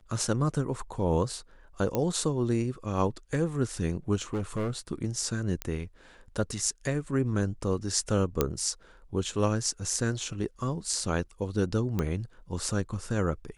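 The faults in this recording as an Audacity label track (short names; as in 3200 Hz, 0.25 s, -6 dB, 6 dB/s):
1.950000	1.950000	pop -14 dBFS
4.150000	4.780000	clipped -26.5 dBFS
5.620000	5.620000	pop -15 dBFS
8.410000	8.410000	pop -9 dBFS
11.990000	11.990000	pop -16 dBFS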